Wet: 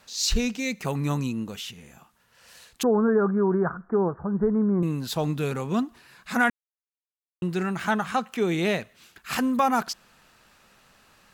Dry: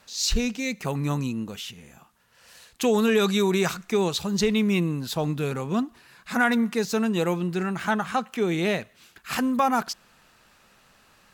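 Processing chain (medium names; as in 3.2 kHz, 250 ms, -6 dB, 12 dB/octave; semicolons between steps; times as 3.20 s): 2.83–4.83 s: steep low-pass 1.6 kHz 72 dB/octave; 6.50–7.42 s: mute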